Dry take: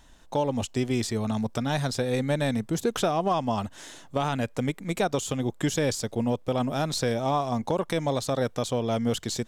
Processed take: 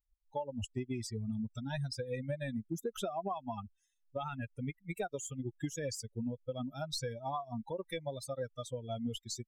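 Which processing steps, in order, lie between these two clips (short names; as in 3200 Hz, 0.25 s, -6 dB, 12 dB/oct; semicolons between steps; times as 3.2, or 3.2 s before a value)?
per-bin expansion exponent 3; compressor, threshold -32 dBFS, peak gain reduction 9 dB; gain -1.5 dB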